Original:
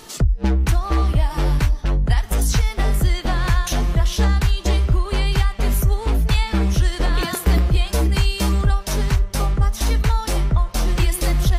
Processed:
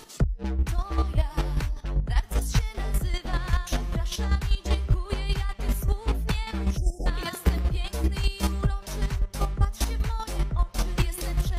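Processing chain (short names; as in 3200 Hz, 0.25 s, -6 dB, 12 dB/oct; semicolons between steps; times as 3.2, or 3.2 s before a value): chopper 5.1 Hz, depth 60%, duty 20%; spectral delete 6.77–7.06, 880–4900 Hz; gain -3.5 dB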